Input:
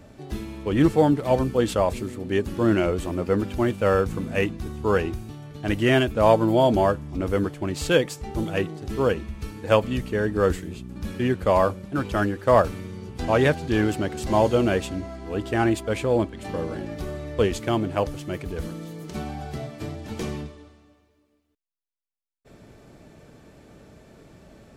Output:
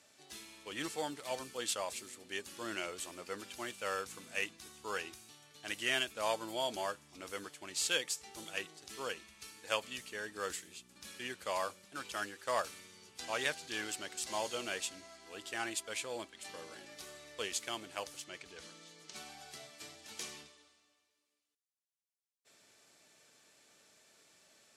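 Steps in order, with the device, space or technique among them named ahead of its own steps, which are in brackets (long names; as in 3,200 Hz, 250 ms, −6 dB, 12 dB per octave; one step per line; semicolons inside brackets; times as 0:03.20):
0:18.24–0:19.16: low-pass filter 6,200 Hz 12 dB per octave
piezo pickup straight into a mixer (low-pass filter 8,600 Hz 12 dB per octave; first difference)
level +2.5 dB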